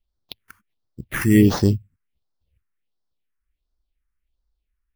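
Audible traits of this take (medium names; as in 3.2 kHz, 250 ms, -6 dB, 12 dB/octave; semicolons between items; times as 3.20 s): aliases and images of a low sample rate 7.8 kHz, jitter 0%; phasing stages 4, 1.4 Hz, lowest notch 610–2500 Hz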